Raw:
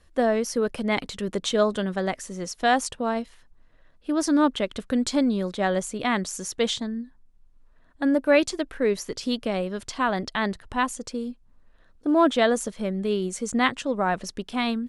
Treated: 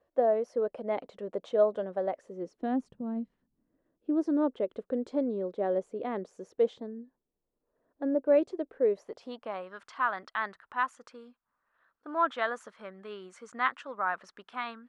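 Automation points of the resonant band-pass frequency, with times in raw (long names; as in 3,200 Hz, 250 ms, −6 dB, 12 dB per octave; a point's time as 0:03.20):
resonant band-pass, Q 2.4
0:02.17 580 Hz
0:03.02 170 Hz
0:04.42 460 Hz
0:08.75 460 Hz
0:09.74 1,300 Hz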